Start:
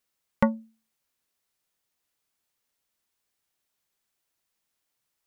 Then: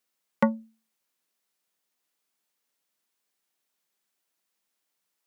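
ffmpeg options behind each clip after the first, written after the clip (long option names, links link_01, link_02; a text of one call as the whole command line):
ffmpeg -i in.wav -af "highpass=frequency=160:width=0.5412,highpass=frequency=160:width=1.3066" out.wav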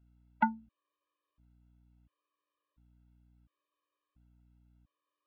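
ffmpeg -i in.wav -af "highpass=370,equalizer=frequency=590:width_type=q:width=4:gain=4,equalizer=frequency=1100:width_type=q:width=4:gain=10,equalizer=frequency=2000:width_type=q:width=4:gain=-7,lowpass=frequency=3100:width=0.5412,lowpass=frequency=3100:width=1.3066,aeval=exprs='val(0)+0.000631*(sin(2*PI*60*n/s)+sin(2*PI*2*60*n/s)/2+sin(2*PI*3*60*n/s)/3+sin(2*PI*4*60*n/s)/4+sin(2*PI*5*60*n/s)/5)':channel_layout=same,afftfilt=real='re*gt(sin(2*PI*0.72*pts/sr)*(1-2*mod(floor(b*sr/1024/320),2)),0)':imag='im*gt(sin(2*PI*0.72*pts/sr)*(1-2*mod(floor(b*sr/1024/320),2)),0)':win_size=1024:overlap=0.75" out.wav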